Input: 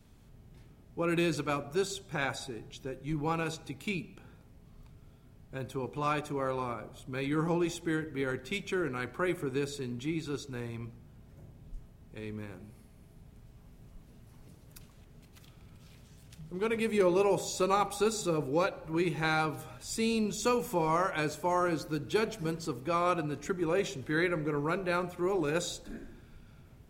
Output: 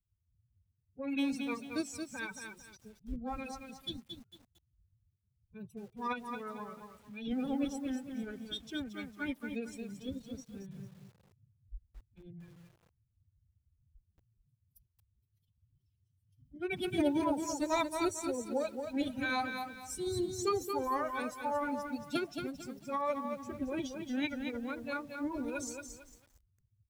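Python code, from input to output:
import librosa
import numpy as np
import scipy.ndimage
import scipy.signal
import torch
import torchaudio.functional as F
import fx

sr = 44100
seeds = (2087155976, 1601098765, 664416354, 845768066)

y = fx.bin_expand(x, sr, power=2.0)
y = fx.pitch_keep_formants(y, sr, semitones=8.5)
y = fx.echo_crushed(y, sr, ms=225, feedback_pct=35, bits=10, wet_db=-6)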